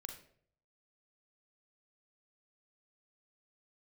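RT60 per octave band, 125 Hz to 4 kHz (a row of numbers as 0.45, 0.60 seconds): 0.85, 0.65, 0.70, 0.50, 0.50, 0.40 seconds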